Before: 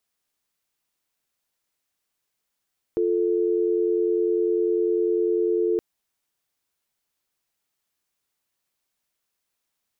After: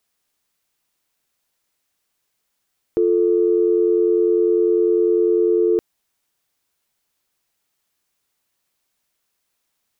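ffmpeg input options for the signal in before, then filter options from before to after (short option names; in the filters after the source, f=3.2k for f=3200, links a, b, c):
-f lavfi -i "aevalsrc='0.0794*(sin(2*PI*350*t)+sin(2*PI*440*t))':d=2.82:s=44100"
-af "acontrast=50"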